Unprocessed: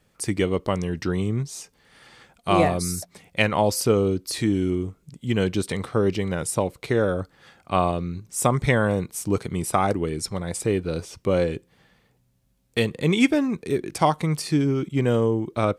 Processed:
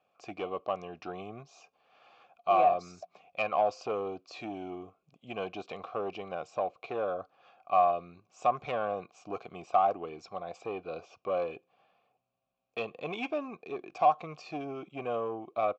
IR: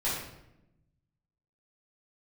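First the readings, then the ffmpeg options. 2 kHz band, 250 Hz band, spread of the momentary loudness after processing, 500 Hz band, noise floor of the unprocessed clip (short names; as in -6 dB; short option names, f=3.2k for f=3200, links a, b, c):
-12.5 dB, -19.5 dB, 15 LU, -8.5 dB, -65 dBFS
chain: -filter_complex "[0:a]aresample=16000,asoftclip=type=tanh:threshold=-15dB,aresample=44100,asplit=3[a][b][c];[a]bandpass=f=730:t=q:w=8,volume=0dB[d];[b]bandpass=f=1.09k:t=q:w=8,volume=-6dB[e];[c]bandpass=f=2.44k:t=q:w=8,volume=-9dB[f];[d][e][f]amix=inputs=3:normalize=0,volume=5dB"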